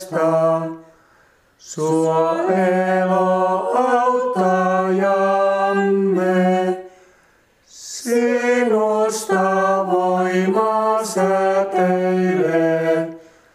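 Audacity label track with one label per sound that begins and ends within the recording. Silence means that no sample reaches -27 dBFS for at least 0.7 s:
1.700000	6.810000	sound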